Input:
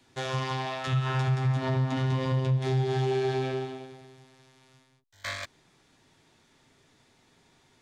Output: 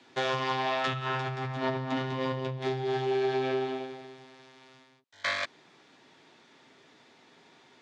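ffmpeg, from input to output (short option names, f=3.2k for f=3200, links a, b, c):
-af "acompressor=threshold=-30dB:ratio=6,highpass=240,lowpass=4.6k,volume=6.5dB"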